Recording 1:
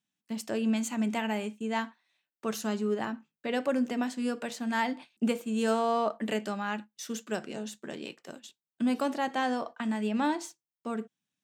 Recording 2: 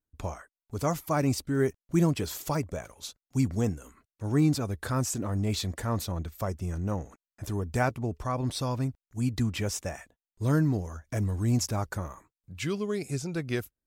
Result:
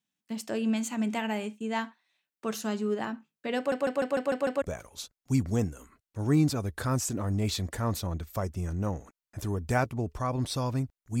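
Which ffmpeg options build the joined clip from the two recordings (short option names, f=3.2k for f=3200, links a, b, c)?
-filter_complex "[0:a]apad=whole_dur=11.2,atrim=end=11.2,asplit=7[a][b][c][d][e][f][g];[a]atrim=end=3.722[h];[b]atrim=start=3.568:end=3.722[i];[c]atrim=start=3.568:end=3.722[j];[d]atrim=start=3.568:end=3.722[k];[e]atrim=start=3.568:end=3.722[l];[f]atrim=start=3.568:end=3.722[m];[g]atrim=start=3.568:end=3.722[n];[1:a]atrim=start=2.668:end=9.25[o];[h][i]acrossfade=d=0.004:c1=hsin:c2=hsin[p];[p][j]acrossfade=d=0.004:c1=hsin:c2=hsin[q];[q][k]acrossfade=d=0.004:c1=hsin:c2=hsin[r];[r][l]acrossfade=d=0.004:c1=hsin:c2=hsin[s];[s][m]acrossfade=d=0.004:c1=hsin:c2=hsin[t];[t][n]acrossfade=d=0.004:c1=hsin:c2=hsin[u];[u][o]acrossfade=d=0.004:c1=hsin:c2=hsin"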